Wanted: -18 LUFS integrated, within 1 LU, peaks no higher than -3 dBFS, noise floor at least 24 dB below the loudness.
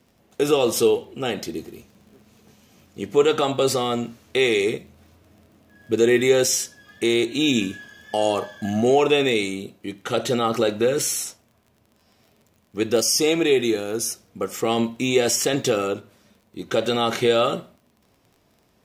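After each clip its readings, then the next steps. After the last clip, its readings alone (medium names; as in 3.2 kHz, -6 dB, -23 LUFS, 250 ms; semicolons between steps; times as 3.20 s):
tick rate 29 per s; loudness -21.5 LUFS; peak level -5.5 dBFS; loudness target -18.0 LUFS
-> de-click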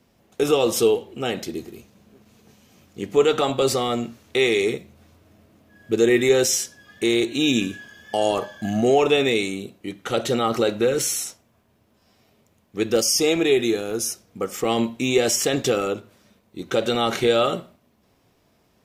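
tick rate 0.58 per s; loudness -21.5 LUFS; peak level -5.5 dBFS; loudness target -18.0 LUFS
-> trim +3.5 dB; peak limiter -3 dBFS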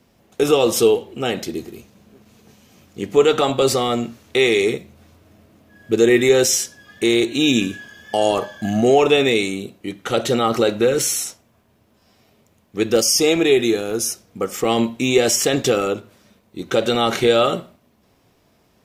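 loudness -18.0 LUFS; peak level -3.0 dBFS; noise floor -60 dBFS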